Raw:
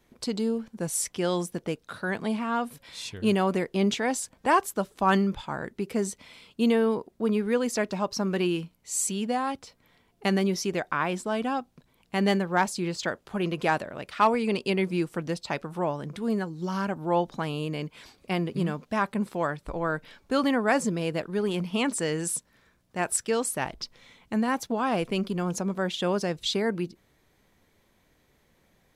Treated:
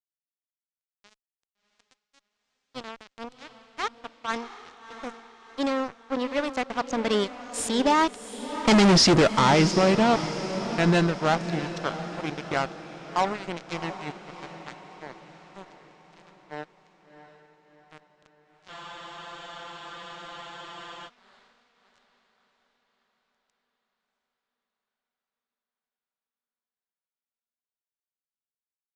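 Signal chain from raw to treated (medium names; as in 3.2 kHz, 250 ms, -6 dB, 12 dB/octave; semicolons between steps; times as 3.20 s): Doppler pass-by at 8.88 s, 53 m/s, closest 10 m; fuzz box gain 42 dB, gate -51 dBFS; low-pass 7.5 kHz 24 dB/octave; echo that smears into a reverb 692 ms, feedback 51%, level -11.5 dB; spectral freeze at 18.72 s, 2.36 s; trim -2 dB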